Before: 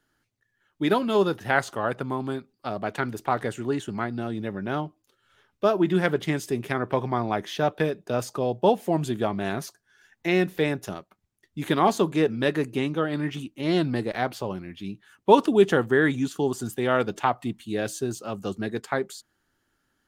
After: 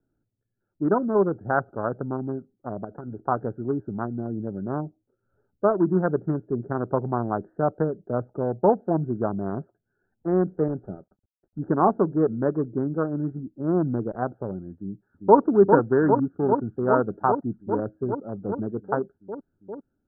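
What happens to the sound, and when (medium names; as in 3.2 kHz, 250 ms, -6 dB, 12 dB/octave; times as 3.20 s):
2.84–3.26 s: compression 8:1, threshold -29 dBFS
10.68–11.59 s: CVSD coder 16 kbps
14.74–15.40 s: echo throw 400 ms, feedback 85%, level -4.5 dB
whole clip: local Wiener filter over 41 samples; steep low-pass 1.5 kHz 72 dB/octave; trim +1.5 dB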